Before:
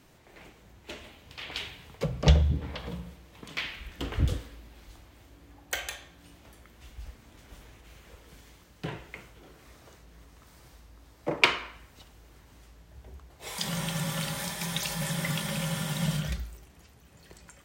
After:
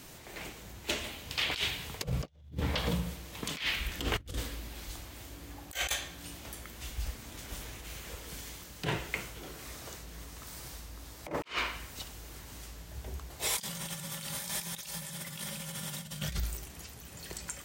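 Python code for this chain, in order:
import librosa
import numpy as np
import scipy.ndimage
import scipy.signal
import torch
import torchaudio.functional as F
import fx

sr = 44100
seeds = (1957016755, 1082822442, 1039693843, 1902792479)

y = fx.high_shelf(x, sr, hz=3800.0, db=10.0)
y = fx.over_compress(y, sr, threshold_db=-35.0, ratio=-0.5)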